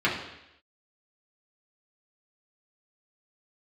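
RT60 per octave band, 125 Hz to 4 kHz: 0.75, 0.80, 0.85, 0.85, 0.90, 0.90 s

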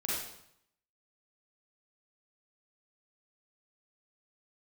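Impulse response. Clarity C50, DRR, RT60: -2.5 dB, -7.0 dB, 0.75 s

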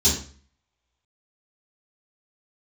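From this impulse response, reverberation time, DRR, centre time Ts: 0.45 s, -10.5 dB, 34 ms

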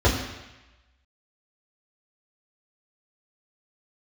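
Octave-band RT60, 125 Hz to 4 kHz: 1.0, 0.95, 0.95, 1.1, 1.2, 1.1 s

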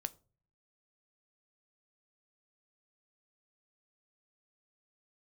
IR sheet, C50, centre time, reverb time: 23.0 dB, 2 ms, 0.40 s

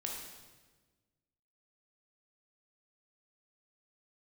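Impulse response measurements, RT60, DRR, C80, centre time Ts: 1.3 s, -1.0 dB, 4.0 dB, 59 ms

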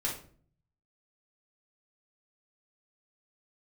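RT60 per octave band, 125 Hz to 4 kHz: 1.0, 0.70, 0.55, 0.40, 0.35, 0.30 s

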